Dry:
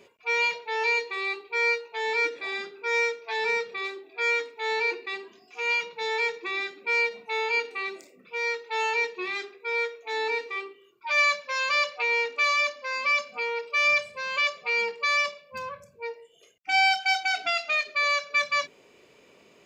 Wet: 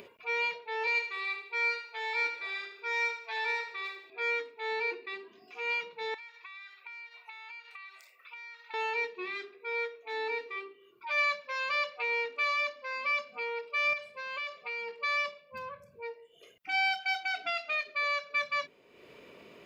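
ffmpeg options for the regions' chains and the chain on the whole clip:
-filter_complex "[0:a]asettb=1/sr,asplit=3[a][b][c];[a]atrim=end=0.874[d];[b]atrim=start=0.87:end=4.1,asetpts=PTS-STARTPTS,afade=t=in:d=0.004:c=qsin,afade=t=out:st=3.226:d=0.004:c=qsin,highpass=580,highshelf=f=4.3k:g=5.5,aecho=1:1:76|152|228|304|380:0.398|0.159|0.0637|0.0255|0.0102,atrim=end_sample=142443[e];[c]atrim=start=4.096[f];[d][e]acrossfade=d=0.004:c1=hsin:c2=qsin[g];[g][f]acrossfade=d=0.004:c1=qsin:c2=hsin,asettb=1/sr,asplit=3[h][i][j];[h]atrim=end=6.144[k];[i]atrim=start=6.14:end=8.74,asetpts=PTS-STARTPTS,afade=t=in:d=0.004:c=qsin,afade=t=out:st=2.596:d=0.004:c=qsin,highpass=f=970:w=0.5412,highpass=f=970:w=1.3066,acompressor=threshold=-39dB:ratio=8:attack=3.2:release=140:knee=1:detection=peak[l];[j]atrim=start=8.736[m];[k][l]acrossfade=d=0.004:c1=hsin:c2=qsin[n];[n][m]acrossfade=d=0.004:c1=qsin:c2=hsin,asettb=1/sr,asplit=3[o][p][q];[o]atrim=end=13.934[r];[p]atrim=start=13.93:end=14.99,asetpts=PTS-STARTPTS,afade=t=in:d=0.004:c=qsin,afade=t=out:st=1.056:d=0.004:c=qsin,highpass=f=260:p=1,acompressor=threshold=-28dB:ratio=4:attack=3.2:release=140:knee=1:detection=peak[s];[q]atrim=start=14.986[t];[r][s]acrossfade=d=0.004:c1=hsin:c2=qsin[u];[u][t]acrossfade=d=0.004:c1=qsin:c2=hsin,equalizer=f=7k:w=1.3:g=-11.5,bandreject=f=800:w=12,acompressor=mode=upward:threshold=-37dB:ratio=2.5,volume=-5.5dB"

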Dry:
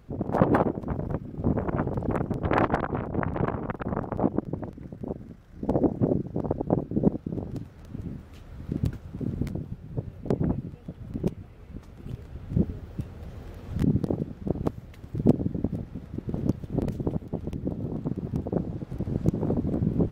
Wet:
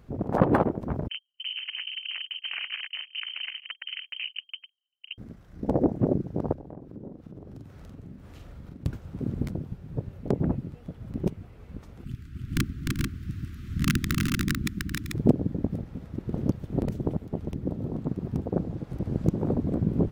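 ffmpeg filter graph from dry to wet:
-filter_complex "[0:a]asettb=1/sr,asplit=3[a][b][c];[a]atrim=end=1.084[d];[b]atrim=start=1.08:end=5.18,asetpts=PTS-STARTPTS,afade=t=in:d=0.004:c=qsin,afade=t=out:st=4.096:d=0.004:c=qsin,agate=range=-47dB:threshold=-31dB:ratio=16:release=100:detection=peak,acompressor=threshold=-31dB:ratio=4:attack=3.2:release=140:knee=1:detection=peak,lowpass=f=2.7k:t=q:w=0.5098,lowpass=f=2.7k:t=q:w=0.6013,lowpass=f=2.7k:t=q:w=0.9,lowpass=f=2.7k:t=q:w=2.563,afreqshift=-3200[e];[c]atrim=start=5.176[f];[d][e]acrossfade=d=0.004:c1=hsin:c2=qsin[g];[g][f]acrossfade=d=0.004:c1=qsin:c2=hsin,asettb=1/sr,asplit=3[h][i][j];[h]atrim=end=6.534[k];[i]atrim=start=6.53:end=8.86,asetpts=PTS-STARTPTS,afade=t=in:d=0.004:c=qsin,afade=t=out:st=2.326:d=0.004:c=qsin,acompressor=threshold=-42dB:ratio=4:attack=3.2:release=140:knee=1:detection=peak,asplit=2[l][m];[m]adelay=45,volume=-4dB[n];[l][n]amix=inputs=2:normalize=0,atrim=end_sample=102753[o];[j]atrim=start=8.856[p];[k][o]acrossfade=d=0.004:c1=hsin:c2=qsin[q];[q][p]acrossfade=d=0.004:c1=qsin:c2=hsin,asettb=1/sr,asplit=3[r][s][t];[r]atrim=end=12.044[u];[s]atrim=start=12.04:end=15.13,asetpts=PTS-STARTPTS,afade=t=in:d=0.004:c=qsin,afade=t=out:st=3.086:d=0.004:c=qsin,aeval=exprs='(mod(5.31*val(0)+1,2)-1)/5.31':c=same,asuperstop=centerf=650:order=8:qfactor=0.67,aecho=1:1:302|388|440:0.668|0.224|0.631,atrim=end_sample=136269[v];[t]atrim=start=15.126[w];[u][v]acrossfade=d=0.004:c1=hsin:c2=qsin[x];[x][w]acrossfade=d=0.004:c1=qsin:c2=hsin"

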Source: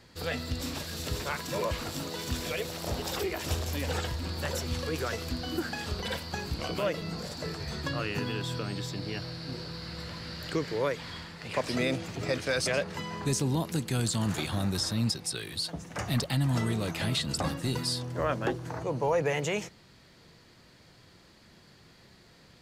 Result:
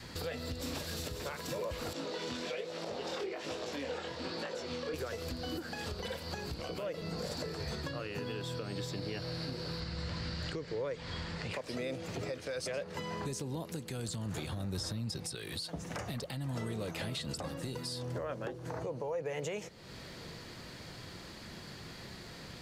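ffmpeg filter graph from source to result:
-filter_complex "[0:a]asettb=1/sr,asplit=3[a][b][c];[a]atrim=end=1.934[d];[b]atrim=start=1.93:end=4.94,asetpts=PTS-STARTPTS,afade=t=in:d=0.004:c=qsin,afade=t=out:st=3.006:d=0.004:c=qsin,highpass=220,lowpass=5.1k,flanger=delay=17.5:depth=7.5:speed=1.2[e];[c]atrim=start=4.936[f];[d][e]acrossfade=d=0.004:c1=hsin:c2=qsin[g];[g][f]acrossfade=d=0.004:c1=qsin:c2=hsin,asettb=1/sr,asplit=3[h][i][j];[h]atrim=end=9.804[k];[i]atrim=start=9.8:end=11.53,asetpts=PTS-STARTPTS,afade=t=in:d=0.004:c=qsin,afade=t=out:st=1.726:d=0.004:c=qsin,lowpass=f=8.5k:w=0.5412,lowpass=f=8.5k:w=1.3066,lowshelf=f=97:g=11[l];[j]atrim=start=11.526[m];[k][l]acrossfade=d=0.004:c1=hsin:c2=qsin[n];[n][m]acrossfade=d=0.004:c1=qsin:c2=hsin,asettb=1/sr,asplit=3[o][p][q];[o]atrim=end=14.084[r];[p]atrim=start=14.08:end=15.35,asetpts=PTS-STARTPTS,afade=t=in:d=0.004:c=qsin,afade=t=out:st=1.266:d=0.004:c=qsin,equalizer=f=76:w=0.4:g=7,acompressor=threshold=-25dB:ratio=6:attack=3.2:release=140:knee=1:detection=peak[s];[q]atrim=start=15.346[t];[r][s]acrossfade=d=0.004:c1=hsin:c2=qsin[u];[u][t]acrossfade=d=0.004:c1=qsin:c2=hsin,adynamicequalizer=threshold=0.00501:dfrequency=500:dqfactor=2.3:tfrequency=500:tqfactor=2.3:attack=5:release=100:ratio=0.375:range=3.5:mode=boostabove:tftype=bell,acompressor=threshold=-46dB:ratio=4,alimiter=level_in=13.5dB:limit=-24dB:level=0:latency=1:release=224,volume=-13.5dB,volume=9dB"

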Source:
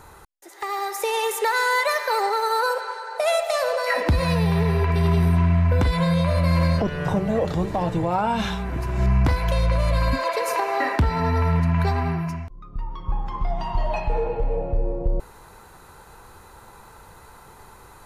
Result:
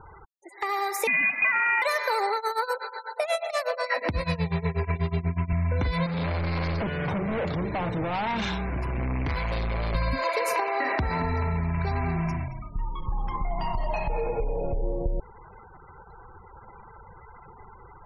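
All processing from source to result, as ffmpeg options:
-filter_complex "[0:a]asettb=1/sr,asplit=3[a][b][c];[a]atrim=end=1.074[d];[b]atrim=start=1.07:end=1.82,asetpts=PTS-STARTPTS,afade=t=in:d=0.004:c=qsin,afade=t=out:st=0.746:d=0.004:c=qsin,acrusher=bits=2:mode=log:mix=0:aa=0.000001,lowpass=f=2.5k:t=q:w=0.5098,lowpass=f=2.5k:t=q:w=0.6013,lowpass=f=2.5k:t=q:w=0.9,lowpass=f=2.5k:t=q:w=2.563,afreqshift=-2900[e];[c]atrim=start=1.816[f];[d][e]acrossfade=d=0.004:c1=hsin:c2=qsin[g];[g][f]acrossfade=d=0.004:c1=qsin:c2=hsin,asettb=1/sr,asplit=3[h][i][j];[h]atrim=end=2.364[k];[i]atrim=start=2.36:end=5.53,asetpts=PTS-STARTPTS,afade=t=in:d=0.004:c=qsin,afade=t=out:st=3.166:d=0.004:c=qsin,highpass=f=47:w=0.5412,highpass=f=47:w=1.3066,bandreject=f=60:t=h:w=6,bandreject=f=120:t=h:w=6,bandreject=f=180:t=h:w=6,bandreject=f=240:t=h:w=6,bandreject=f=300:t=h:w=6,bandreject=f=360:t=h:w=6,bandreject=f=420:t=h:w=6,tremolo=f=8.2:d=0.89[l];[j]atrim=start=5.526[m];[k][l]acrossfade=d=0.004:c1=hsin:c2=qsin[n];[n][m]acrossfade=d=0.004:c1=qsin:c2=hsin,asettb=1/sr,asplit=3[o][p][q];[o]atrim=end=6.064[r];[p]atrim=start=6.06:end=9.95,asetpts=PTS-STARTPTS,afade=t=in:d=0.004:c=qsin,afade=t=out:st=3.886:d=0.004:c=qsin,highpass=44,bandreject=f=1.3k:w=29,asoftclip=type=hard:threshold=-26dB[s];[q]atrim=start=9.946[t];[r][s]acrossfade=d=0.004:c1=hsin:c2=qsin[u];[u][t]acrossfade=d=0.004:c1=qsin:c2=hsin,asettb=1/sr,asplit=3[v][w][x];[v]atrim=end=10.664[y];[w]atrim=start=10.66:end=14.83,asetpts=PTS-STARTPTS,afade=t=in:d=0.004:c=qsin,afade=t=out:st=4.166:d=0.004:c=qsin,acompressor=threshold=-22dB:ratio=4:attack=3.2:release=140:knee=1:detection=peak,asplit=5[z][aa][ab][ac][ad];[aa]adelay=225,afreqshift=-32,volume=-10dB[ae];[ab]adelay=450,afreqshift=-64,volume=-19.6dB[af];[ac]adelay=675,afreqshift=-96,volume=-29.3dB[ag];[ad]adelay=900,afreqshift=-128,volume=-38.9dB[ah];[z][ae][af][ag][ah]amix=inputs=5:normalize=0,atrim=end_sample=183897[ai];[x]atrim=start=14.826[aj];[y][ai]acrossfade=d=0.004:c1=hsin:c2=qsin[ak];[ak][aj]acrossfade=d=0.004:c1=qsin:c2=hsin,acompressor=threshold=-22dB:ratio=8,equalizer=f=2.2k:t=o:w=0.25:g=6.5,afftfilt=real='re*gte(hypot(re,im),0.00891)':imag='im*gte(hypot(re,im),0.00891)':win_size=1024:overlap=0.75"

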